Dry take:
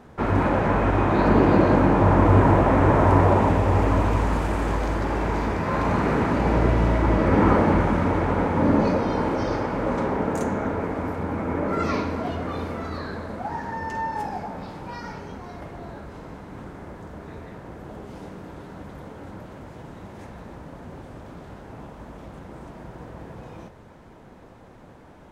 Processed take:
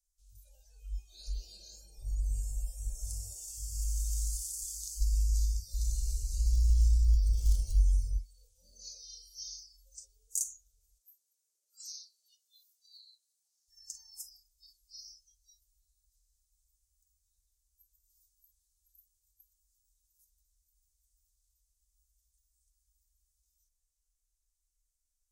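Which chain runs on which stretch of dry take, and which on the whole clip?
5.00–8.17 s: bass shelf 480 Hz +10 dB + hard clipper -4 dBFS
10.98–13.68 s: Chebyshev high-pass 310 Hz, order 5 + flange 2 Hz, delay 4.1 ms, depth 6.9 ms, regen +1%
whole clip: spectral noise reduction 23 dB; inverse Chebyshev band-stop 130–2100 Hz, stop band 60 dB; bass shelf 140 Hz -12 dB; trim +13 dB

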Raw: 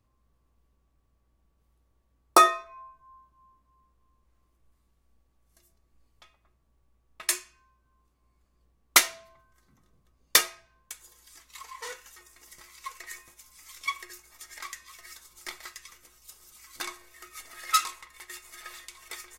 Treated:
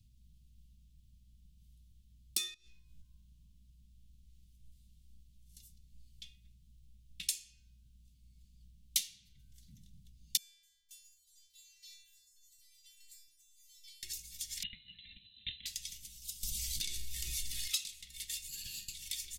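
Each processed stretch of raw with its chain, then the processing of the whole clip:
2.54–3.02 s: flutter echo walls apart 3.3 m, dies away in 0.33 s + compression 16:1, threshold -48 dBFS
10.37–14.03 s: inharmonic resonator 320 Hz, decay 0.77 s, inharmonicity 0.002 + feedback delay 258 ms, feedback 29%, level -23 dB
14.63–15.66 s: companding laws mixed up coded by A + peaking EQ 290 Hz +5 dB 2.1 oct + frequency inversion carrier 4 kHz
16.43–17.68 s: bass shelf 100 Hz +11 dB + level flattener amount 70%
18.48–18.94 s: rippled EQ curve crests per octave 1.4, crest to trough 16 dB + valve stage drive 43 dB, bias 0.75
whole clip: Chebyshev band-stop 190–3200 Hz, order 3; treble shelf 9 kHz -4.5 dB; compression 3:1, threshold -46 dBFS; trim +9 dB

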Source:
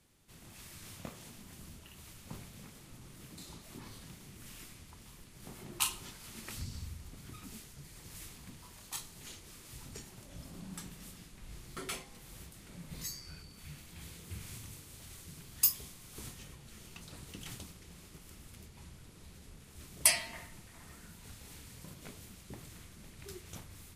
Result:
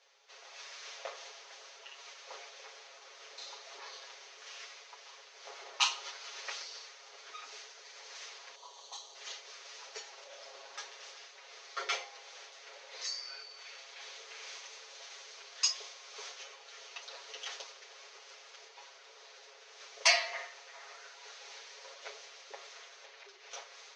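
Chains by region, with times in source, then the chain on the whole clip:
8.55–9.15 s: high-order bell 1.9 kHz -12.5 dB 1.2 oct + compression 2:1, threshold -47 dBFS + band-stop 5.1 kHz, Q 5.1
23.05–23.51 s: high-pass 290 Hz + compression 10:1, threshold -52 dBFS + distance through air 71 m
whole clip: Chebyshev band-pass 450–6300 Hz, order 5; comb 7.3 ms, depth 98%; trim +5 dB

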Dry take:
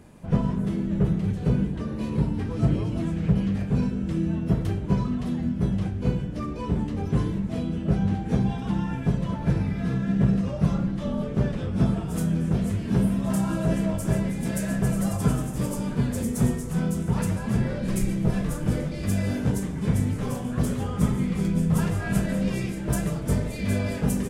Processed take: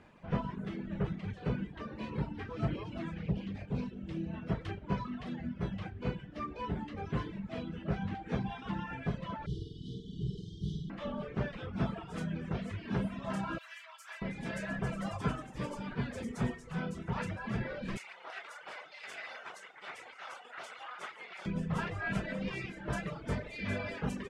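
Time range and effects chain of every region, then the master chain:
3.23–4.34 s: peaking EQ 1.4 kHz -9.5 dB 1.2 oct + loudspeaker Doppler distortion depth 0.25 ms
9.46–10.90 s: brick-wall FIR band-stop 460–2900 Hz + peaking EQ 250 Hz -10 dB 1.5 oct + flutter echo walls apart 8.3 m, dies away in 1.3 s
13.58–14.22 s: high-pass 1.1 kHz 24 dB/octave + peaking EQ 1.5 kHz -3.5 dB 1.8 oct + careless resampling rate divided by 2×, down none, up zero stuff
17.97–21.46 s: comb filter that takes the minimum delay 1.4 ms + high-pass 1 kHz
whole clip: reverb removal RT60 0.92 s; low-pass 2.8 kHz 12 dB/octave; tilt shelf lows -7 dB, about 630 Hz; trim -5 dB

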